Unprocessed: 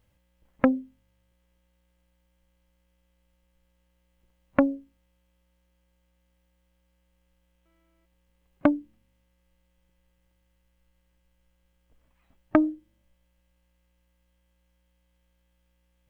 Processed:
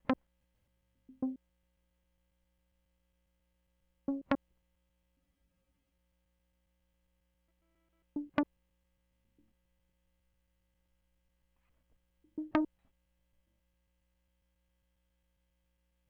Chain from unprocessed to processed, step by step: slices in reverse order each 0.136 s, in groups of 5; spectral freeze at 5.22, 0.68 s; core saturation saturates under 1100 Hz; gain -8 dB

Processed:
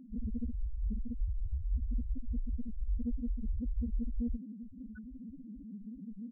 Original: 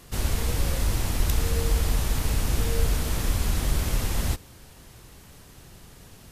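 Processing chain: comb 3.4 ms, depth 47%; reverse; compressor 6:1, threshold -31 dBFS, peak gain reduction 16.5 dB; reverse; small resonant body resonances 220/1500/3300 Hz, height 17 dB, ringing for 40 ms; loudest bins only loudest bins 1; Doppler distortion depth 0.3 ms; gain +6 dB

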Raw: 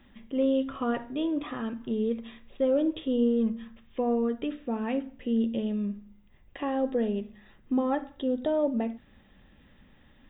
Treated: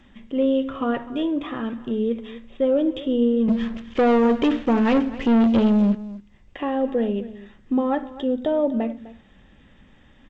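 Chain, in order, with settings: 3.48–5.95 sample leveller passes 3; echo 0.254 s -17 dB; gain +5 dB; G.722 64 kbps 16000 Hz

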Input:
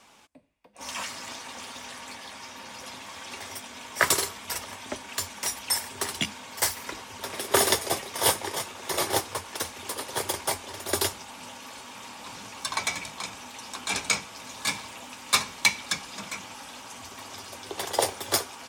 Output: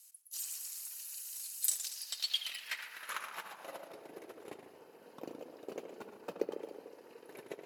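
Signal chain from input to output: band-swap scrambler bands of 4000 Hz; HPF 55 Hz 12 dB/oct; notch 1400 Hz, Q 11; in parallel at +1 dB: compressor, threshold -36 dBFS, peak gain reduction 19 dB; on the sum: wide varispeed 2.44×; band-pass sweep 7900 Hz -> 400 Hz, 1.67–4.08; on a send: darkening echo 74 ms, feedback 75%, low-pass 2000 Hz, level -7.5 dB; on the sum: warbling echo 0.115 s, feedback 46%, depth 137 cents, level -11.5 dB

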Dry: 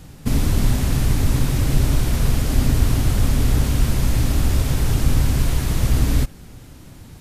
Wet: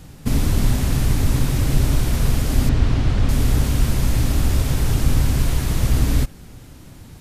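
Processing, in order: 2.69–3.29 LPF 4200 Hz 12 dB/oct

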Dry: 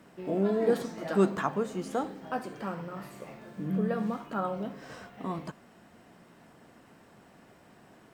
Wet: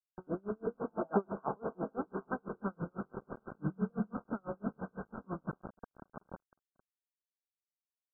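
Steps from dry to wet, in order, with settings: HPF 90 Hz 12 dB/oct; diffused feedback echo 0.991 s, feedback 55%, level -14 dB; compressor 6:1, threshold -31 dBFS, peak gain reduction 12.5 dB; bell 820 Hz -9 dB 1.4 oct, from 0.8 s +7.5 dB, from 1.93 s -8 dB; tapped delay 86/277/778 ms -18/-15/-13 dB; bit-crush 7-bit; brick-wall FIR low-pass 1600 Hz; dB-linear tremolo 6 Hz, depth 38 dB; gain +5.5 dB

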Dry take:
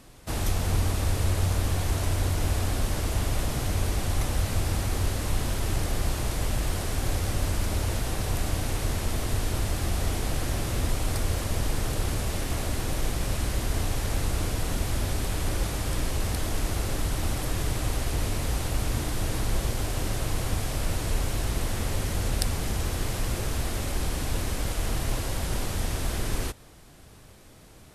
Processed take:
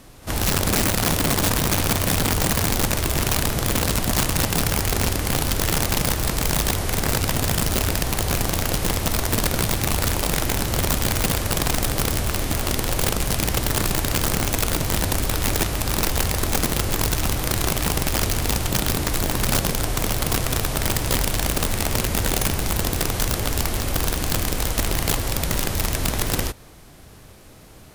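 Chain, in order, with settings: reverse echo 56 ms -19.5 dB; formant shift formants +2 st; wrapped overs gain 20 dB; gain +5 dB

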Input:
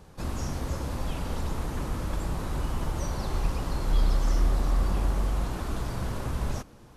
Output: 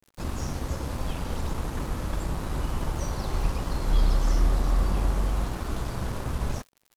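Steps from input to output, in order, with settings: crackle 110/s -40 dBFS; crossover distortion -44 dBFS; gain +2 dB

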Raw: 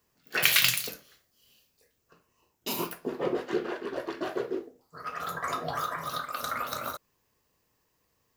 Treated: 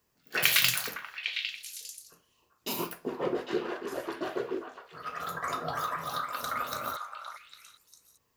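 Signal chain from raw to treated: delay with a stepping band-pass 0.402 s, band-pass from 1100 Hz, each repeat 1.4 oct, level -4 dB; gain -1.5 dB

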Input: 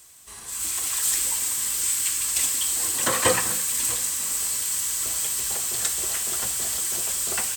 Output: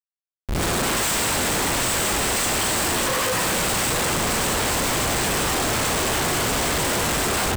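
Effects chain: harmonic-percussive split harmonic +6 dB; Schmitt trigger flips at -20.5 dBFS

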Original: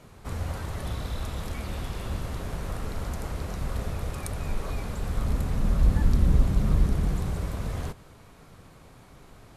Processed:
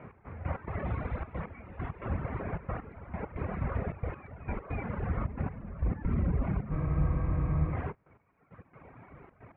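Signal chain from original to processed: elliptic low-pass 2300 Hz, stop band 60 dB; reverb removal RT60 1.8 s; HPF 68 Hz 12 dB/oct; limiter -26.5 dBFS, peak gain reduction 9 dB; step gate "x...x.xxxxx." 134 bpm -12 dB; spectral freeze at 6.73, 1.00 s; gain +5 dB

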